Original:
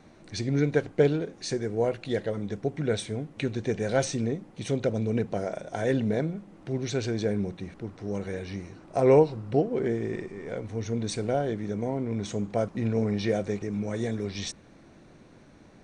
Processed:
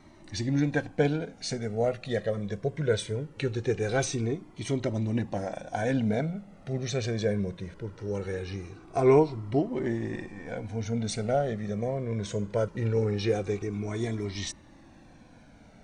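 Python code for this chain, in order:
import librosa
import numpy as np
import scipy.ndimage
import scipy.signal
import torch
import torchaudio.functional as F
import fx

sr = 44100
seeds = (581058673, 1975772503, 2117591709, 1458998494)

y = fx.comb_cascade(x, sr, direction='falling', hz=0.21)
y = F.gain(torch.from_numpy(y), 4.5).numpy()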